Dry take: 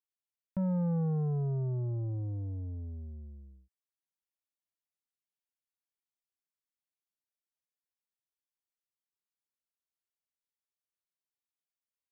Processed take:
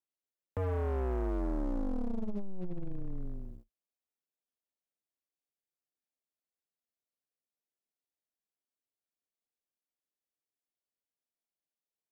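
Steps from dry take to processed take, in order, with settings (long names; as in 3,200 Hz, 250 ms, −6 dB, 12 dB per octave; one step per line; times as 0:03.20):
flat-topped bell 500 Hz +10 dB
frequency shifter −96 Hz
leveller curve on the samples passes 3
brickwall limiter −27.5 dBFS, peak gain reduction 6 dB
level −1.5 dB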